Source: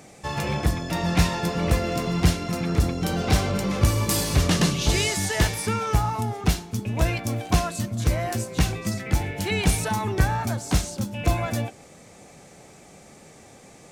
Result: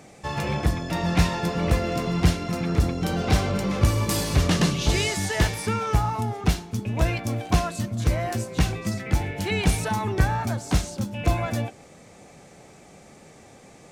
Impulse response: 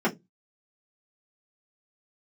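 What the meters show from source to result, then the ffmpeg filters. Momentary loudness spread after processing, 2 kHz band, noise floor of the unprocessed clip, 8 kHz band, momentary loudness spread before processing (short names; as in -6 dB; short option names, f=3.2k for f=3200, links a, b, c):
5 LU, -0.5 dB, -49 dBFS, -3.5 dB, 6 LU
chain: -af "highshelf=f=5.9k:g=-5.5"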